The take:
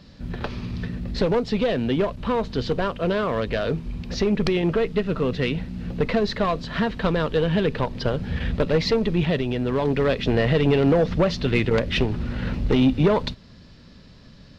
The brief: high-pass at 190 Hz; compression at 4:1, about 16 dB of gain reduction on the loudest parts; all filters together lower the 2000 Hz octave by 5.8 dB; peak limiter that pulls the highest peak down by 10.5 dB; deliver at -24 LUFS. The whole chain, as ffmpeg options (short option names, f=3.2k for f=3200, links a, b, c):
-af "highpass=190,equalizer=f=2k:t=o:g=-7.5,acompressor=threshold=-36dB:ratio=4,volume=16dB,alimiter=limit=-14dB:level=0:latency=1"